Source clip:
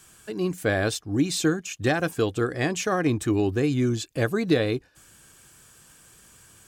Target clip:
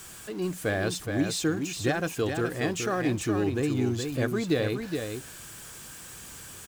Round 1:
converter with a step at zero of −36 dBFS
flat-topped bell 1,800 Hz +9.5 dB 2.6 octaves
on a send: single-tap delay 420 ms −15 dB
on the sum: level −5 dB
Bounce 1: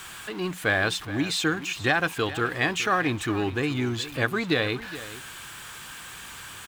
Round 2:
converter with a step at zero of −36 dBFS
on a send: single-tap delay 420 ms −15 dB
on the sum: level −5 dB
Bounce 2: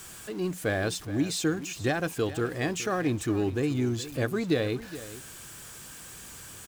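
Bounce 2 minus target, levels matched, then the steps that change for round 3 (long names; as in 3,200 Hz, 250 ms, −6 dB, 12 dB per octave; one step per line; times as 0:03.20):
echo-to-direct −9 dB
change: single-tap delay 420 ms −6 dB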